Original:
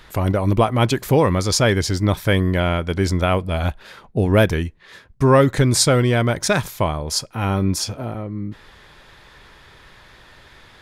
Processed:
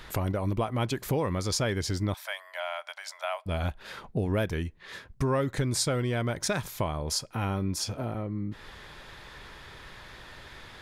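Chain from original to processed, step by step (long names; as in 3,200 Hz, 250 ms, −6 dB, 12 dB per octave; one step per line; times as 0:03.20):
downward compressor 2.5 to 1, threshold −31 dBFS, peak gain reduction 14.5 dB
0:02.14–0:03.46: Chebyshev high-pass filter 610 Hz, order 6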